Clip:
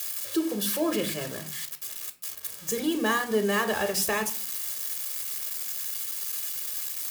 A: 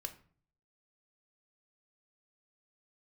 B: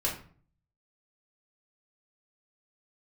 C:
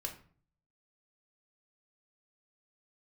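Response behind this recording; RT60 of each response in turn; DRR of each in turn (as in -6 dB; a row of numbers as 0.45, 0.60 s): A; 0.45, 0.45, 0.45 s; 6.5, -4.0, 2.0 dB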